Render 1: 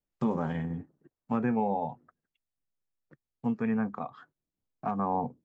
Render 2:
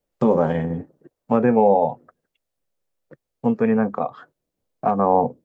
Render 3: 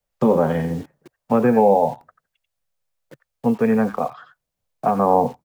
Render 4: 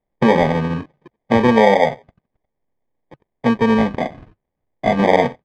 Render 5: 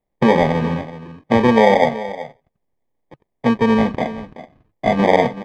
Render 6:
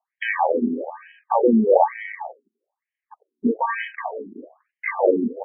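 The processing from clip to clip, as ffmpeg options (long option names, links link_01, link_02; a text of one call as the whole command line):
ffmpeg -i in.wav -af "equalizer=frequency=530:width=1.6:gain=11,volume=7.5dB" out.wav
ffmpeg -i in.wav -filter_complex "[0:a]acrossover=split=190|540|1000[link_01][link_02][link_03][link_04];[link_02]acrusher=bits=7:mix=0:aa=0.000001[link_05];[link_04]aecho=1:1:89:0.447[link_06];[link_01][link_05][link_03][link_06]amix=inputs=4:normalize=0,volume=1dB" out.wav
ffmpeg -i in.wav -af "acrusher=samples=32:mix=1:aa=0.000001,lowpass=2300,volume=3dB" out.wav
ffmpeg -i in.wav -af "equalizer=frequency=1500:width=7.2:gain=-4,aecho=1:1:379:0.188" out.wav
ffmpeg -i in.wav -filter_complex "[0:a]asplit=2[link_01][link_02];[link_02]acompressor=threshold=-21dB:ratio=6,volume=0dB[link_03];[link_01][link_03]amix=inputs=2:normalize=0,afftfilt=real='re*between(b*sr/1024,280*pow(2300/280,0.5+0.5*sin(2*PI*1.1*pts/sr))/1.41,280*pow(2300/280,0.5+0.5*sin(2*PI*1.1*pts/sr))*1.41)':imag='im*between(b*sr/1024,280*pow(2300/280,0.5+0.5*sin(2*PI*1.1*pts/sr))/1.41,280*pow(2300/280,0.5+0.5*sin(2*PI*1.1*pts/sr))*1.41)':win_size=1024:overlap=0.75" out.wav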